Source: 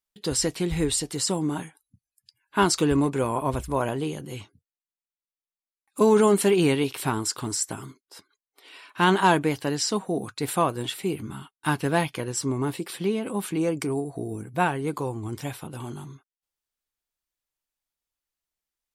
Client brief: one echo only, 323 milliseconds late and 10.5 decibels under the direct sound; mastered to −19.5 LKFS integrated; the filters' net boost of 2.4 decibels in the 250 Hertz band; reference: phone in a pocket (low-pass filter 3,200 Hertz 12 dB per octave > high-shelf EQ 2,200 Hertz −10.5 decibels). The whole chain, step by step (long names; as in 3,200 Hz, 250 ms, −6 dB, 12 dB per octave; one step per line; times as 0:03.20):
low-pass filter 3,200 Hz 12 dB per octave
parametric band 250 Hz +3.5 dB
high-shelf EQ 2,200 Hz −10.5 dB
single-tap delay 323 ms −10.5 dB
level +5.5 dB